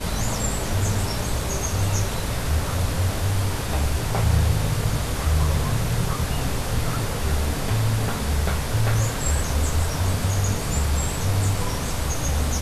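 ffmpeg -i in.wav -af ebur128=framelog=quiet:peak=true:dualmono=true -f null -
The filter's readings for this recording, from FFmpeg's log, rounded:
Integrated loudness:
  I:         -20.9 LUFS
  Threshold: -30.9 LUFS
Loudness range:
  LRA:         1.2 LU
  Threshold: -40.8 LUFS
  LRA low:   -21.5 LUFS
  LRA high:  -20.3 LUFS
True peak:
  Peak:       -8.8 dBFS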